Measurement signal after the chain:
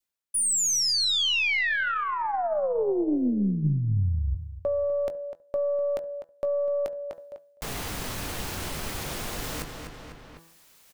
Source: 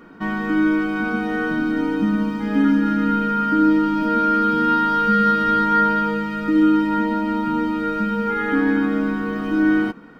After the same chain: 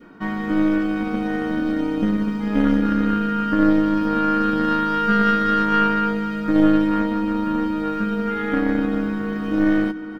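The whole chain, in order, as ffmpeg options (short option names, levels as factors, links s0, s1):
-filter_complex "[0:a]asplit=2[s0][s1];[s1]adelay=250,lowpass=f=4900:p=1,volume=0.2,asplit=2[s2][s3];[s3]adelay=250,lowpass=f=4900:p=1,volume=0.34,asplit=2[s4][s5];[s5]adelay=250,lowpass=f=4900:p=1,volume=0.34[s6];[s2][s4][s6]amix=inputs=3:normalize=0[s7];[s0][s7]amix=inputs=2:normalize=0,adynamicequalizer=threshold=0.0224:dfrequency=1100:dqfactor=1.2:tfrequency=1100:tqfactor=1.2:attack=5:release=100:ratio=0.375:range=2.5:mode=cutabove:tftype=bell,asplit=2[s8][s9];[s9]adelay=20,volume=0.2[s10];[s8][s10]amix=inputs=2:normalize=0,bandreject=f=165.4:t=h:w=4,bandreject=f=330.8:t=h:w=4,bandreject=f=496.2:t=h:w=4,bandreject=f=661.6:t=h:w=4,bandreject=f=827:t=h:w=4,bandreject=f=992.4:t=h:w=4,bandreject=f=1157.8:t=h:w=4,bandreject=f=1323.2:t=h:w=4,bandreject=f=1488.6:t=h:w=4,bandreject=f=1654:t=h:w=4,bandreject=f=1819.4:t=h:w=4,aeval=exprs='0.447*(cos(1*acos(clip(val(0)/0.447,-1,1)))-cos(1*PI/2))+0.112*(cos(2*acos(clip(val(0)/0.447,-1,1)))-cos(2*PI/2))+0.0282*(cos(3*acos(clip(val(0)/0.447,-1,1)))-cos(3*PI/2))':c=same,areverse,acompressor=mode=upward:threshold=0.0355:ratio=2.5,areverse"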